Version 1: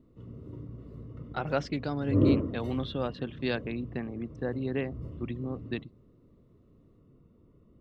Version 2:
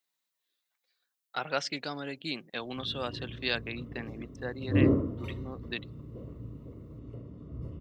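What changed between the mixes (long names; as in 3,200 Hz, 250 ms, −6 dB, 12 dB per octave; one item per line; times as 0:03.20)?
speech: add spectral tilt +4 dB per octave
background: entry +2.60 s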